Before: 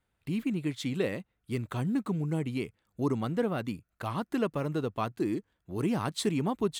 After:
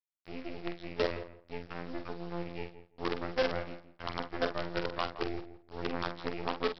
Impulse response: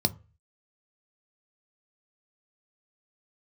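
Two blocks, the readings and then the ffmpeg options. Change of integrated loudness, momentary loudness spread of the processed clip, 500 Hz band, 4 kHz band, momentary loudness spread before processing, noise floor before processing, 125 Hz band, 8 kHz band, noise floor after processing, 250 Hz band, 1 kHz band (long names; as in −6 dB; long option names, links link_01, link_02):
−5.0 dB, 11 LU, −2.0 dB, 0.0 dB, 7 LU, −79 dBFS, −12.0 dB, below −15 dB, −66 dBFS, −10.5 dB, −1.0 dB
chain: -filter_complex "[0:a]acrossover=split=300 2400:gain=0.112 1 0.0891[link_01][link_02][link_03];[link_01][link_02][link_03]amix=inputs=3:normalize=0,afreqshift=44,afftfilt=real='hypot(re,im)*cos(PI*b)':imag='0':win_size=2048:overlap=0.75,aresample=11025,acrusher=bits=6:dc=4:mix=0:aa=0.000001,aresample=44100,equalizer=frequency=85:width_type=o:width=0.77:gain=2.5,asplit=2[link_04][link_05];[link_05]adelay=46,volume=-8.5dB[link_06];[link_04][link_06]amix=inputs=2:normalize=0,asplit=2[link_07][link_08];[link_08]adelay=168,lowpass=frequency=1500:poles=1,volume=-12dB,asplit=2[link_09][link_10];[link_10]adelay=168,lowpass=frequency=1500:poles=1,volume=0.18[link_11];[link_09][link_11]amix=inputs=2:normalize=0[link_12];[link_07][link_12]amix=inputs=2:normalize=0,volume=3dB"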